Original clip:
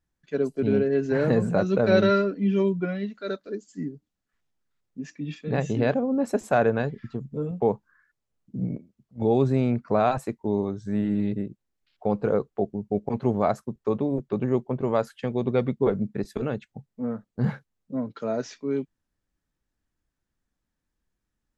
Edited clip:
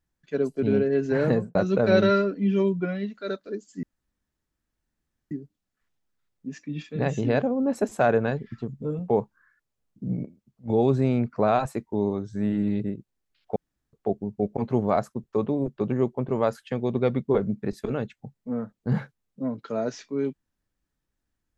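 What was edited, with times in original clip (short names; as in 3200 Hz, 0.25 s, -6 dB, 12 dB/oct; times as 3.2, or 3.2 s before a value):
1.29–1.55 studio fade out
3.83 insert room tone 1.48 s
12.08–12.45 room tone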